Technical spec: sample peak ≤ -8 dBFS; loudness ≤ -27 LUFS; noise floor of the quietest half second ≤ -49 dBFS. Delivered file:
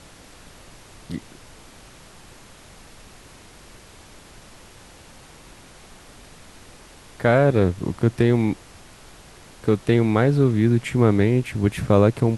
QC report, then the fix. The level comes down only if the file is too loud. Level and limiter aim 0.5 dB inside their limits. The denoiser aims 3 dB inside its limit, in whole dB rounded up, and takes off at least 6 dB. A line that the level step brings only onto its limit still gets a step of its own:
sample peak -3.0 dBFS: fail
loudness -20.0 LUFS: fail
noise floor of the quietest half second -46 dBFS: fail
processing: gain -7.5 dB

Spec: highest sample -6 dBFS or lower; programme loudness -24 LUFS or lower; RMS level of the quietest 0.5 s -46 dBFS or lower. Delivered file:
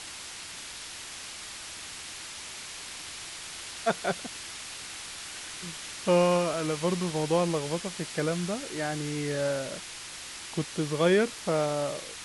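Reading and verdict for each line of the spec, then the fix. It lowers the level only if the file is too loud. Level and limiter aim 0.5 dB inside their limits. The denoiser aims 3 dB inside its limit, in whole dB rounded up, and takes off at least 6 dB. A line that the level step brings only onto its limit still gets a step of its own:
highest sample -12.5 dBFS: OK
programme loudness -31.0 LUFS: OK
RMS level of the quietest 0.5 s -42 dBFS: fail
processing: denoiser 7 dB, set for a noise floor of -42 dBFS

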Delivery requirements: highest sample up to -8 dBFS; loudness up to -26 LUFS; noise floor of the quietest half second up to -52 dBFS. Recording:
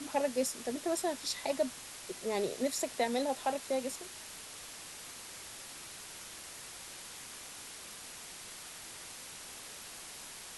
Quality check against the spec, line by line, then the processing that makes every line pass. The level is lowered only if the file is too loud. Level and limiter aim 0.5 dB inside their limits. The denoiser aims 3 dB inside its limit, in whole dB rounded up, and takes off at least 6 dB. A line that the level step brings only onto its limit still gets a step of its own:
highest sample -19.5 dBFS: OK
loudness -38.5 LUFS: OK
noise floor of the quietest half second -48 dBFS: fail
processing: denoiser 7 dB, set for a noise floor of -48 dBFS

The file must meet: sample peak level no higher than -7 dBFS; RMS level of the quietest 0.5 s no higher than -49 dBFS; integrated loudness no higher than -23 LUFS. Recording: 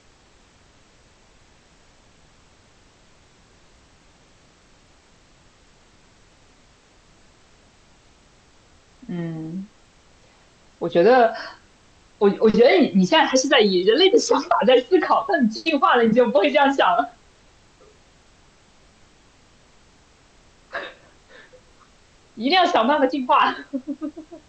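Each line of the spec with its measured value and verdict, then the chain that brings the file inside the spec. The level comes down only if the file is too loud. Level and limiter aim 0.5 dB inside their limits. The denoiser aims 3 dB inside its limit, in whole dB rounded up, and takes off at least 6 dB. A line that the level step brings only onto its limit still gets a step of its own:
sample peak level -5.0 dBFS: fail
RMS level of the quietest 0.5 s -54 dBFS: OK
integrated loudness -18.0 LUFS: fail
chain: gain -5.5 dB

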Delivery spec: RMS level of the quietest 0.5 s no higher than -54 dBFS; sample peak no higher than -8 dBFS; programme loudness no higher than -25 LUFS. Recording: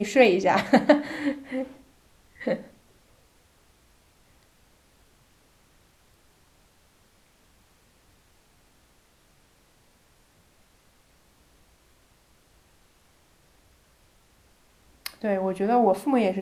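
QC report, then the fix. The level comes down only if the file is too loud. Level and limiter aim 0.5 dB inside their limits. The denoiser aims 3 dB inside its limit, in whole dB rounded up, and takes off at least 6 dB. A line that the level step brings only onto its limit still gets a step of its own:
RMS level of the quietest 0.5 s -61 dBFS: OK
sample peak -4.5 dBFS: fail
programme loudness -24.0 LUFS: fail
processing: gain -1.5 dB; limiter -8.5 dBFS

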